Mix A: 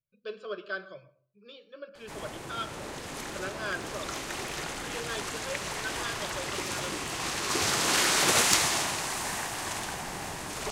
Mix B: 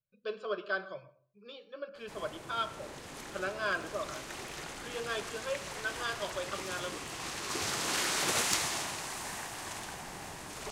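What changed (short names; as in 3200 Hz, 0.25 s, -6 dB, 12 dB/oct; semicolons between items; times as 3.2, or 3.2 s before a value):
speech: add bell 860 Hz +10 dB 0.61 oct; background -7.0 dB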